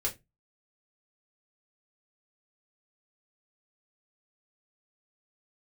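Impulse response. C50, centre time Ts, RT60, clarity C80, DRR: 16.5 dB, 12 ms, 0.20 s, 24.5 dB, −3.0 dB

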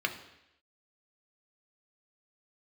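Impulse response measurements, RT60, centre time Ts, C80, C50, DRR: 0.85 s, 14 ms, 13.5 dB, 11.0 dB, 4.0 dB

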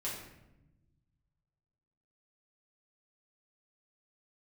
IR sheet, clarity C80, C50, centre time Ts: 5.5 dB, 2.5 dB, 49 ms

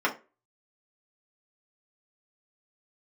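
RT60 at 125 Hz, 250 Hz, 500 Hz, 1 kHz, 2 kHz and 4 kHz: 0.30, 0.30, 0.35, 0.25, 0.25, 0.20 seconds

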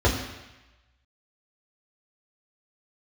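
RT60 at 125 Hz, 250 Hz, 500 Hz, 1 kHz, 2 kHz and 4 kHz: 1.0, 0.95, 0.95, 1.1, 1.2, 1.1 seconds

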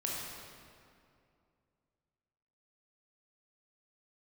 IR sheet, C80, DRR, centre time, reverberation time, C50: 0.5 dB, −4.0 dB, 125 ms, 2.4 s, −1.5 dB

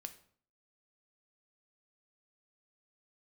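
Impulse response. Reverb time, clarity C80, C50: 0.55 s, 17.5 dB, 14.0 dB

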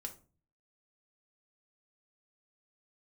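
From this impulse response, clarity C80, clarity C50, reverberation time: 19.5 dB, 13.0 dB, 0.35 s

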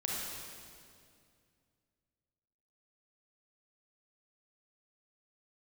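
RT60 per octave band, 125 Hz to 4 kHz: 3.1, 2.8, 2.4, 2.1, 2.0, 2.0 seconds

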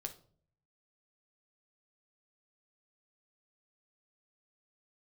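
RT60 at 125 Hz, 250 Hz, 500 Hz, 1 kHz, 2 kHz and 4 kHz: 1.0, 0.70, 0.60, 0.45, 0.30, 0.35 seconds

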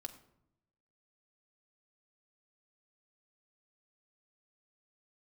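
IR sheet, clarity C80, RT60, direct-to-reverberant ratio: 15.0 dB, 0.80 s, 5.0 dB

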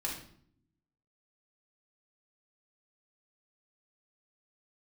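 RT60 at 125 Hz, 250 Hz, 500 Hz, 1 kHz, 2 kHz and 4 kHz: 1.2, 1.1, 0.70, 0.55, 0.50, 0.50 seconds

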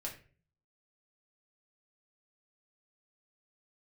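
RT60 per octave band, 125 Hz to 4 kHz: 0.70, 0.65, 0.45, 0.35, 0.40, 0.30 seconds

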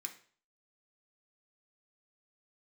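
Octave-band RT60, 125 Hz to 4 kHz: 0.50, 0.45, 0.45, 0.45, 0.45, 0.45 seconds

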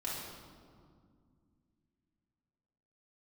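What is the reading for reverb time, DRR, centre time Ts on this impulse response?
2.1 s, −7.0 dB, 99 ms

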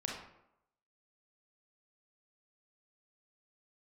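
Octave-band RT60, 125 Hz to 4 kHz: 0.70, 0.80, 0.85, 0.80, 0.65, 0.45 seconds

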